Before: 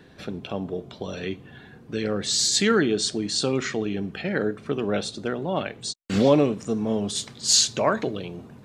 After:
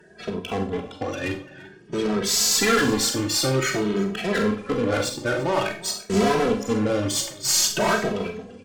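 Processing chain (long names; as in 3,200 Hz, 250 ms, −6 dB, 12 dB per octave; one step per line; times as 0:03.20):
spectral magnitudes quantised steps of 30 dB
high-pass filter 62 Hz
low-shelf EQ 180 Hz −7 dB
notch filter 3,900 Hz, Q 7.4
hard clipping −25 dBFS, distortion −6 dB
downsampling to 22,050 Hz
harmonic generator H 2 −11 dB, 7 −24 dB, 8 −25 dB, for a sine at −21.5 dBFS
single-tap delay 342 ms −20 dB
four-comb reverb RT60 0.35 s, combs from 30 ms, DRR 4.5 dB
barber-pole flanger 2.7 ms +0.51 Hz
level +8.5 dB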